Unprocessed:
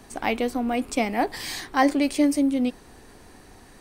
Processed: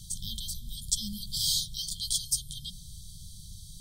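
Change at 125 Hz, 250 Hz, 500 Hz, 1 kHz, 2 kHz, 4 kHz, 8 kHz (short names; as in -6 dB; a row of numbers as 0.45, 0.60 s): n/a, -24.5 dB, under -40 dB, under -40 dB, under -40 dB, +5.5 dB, +7.0 dB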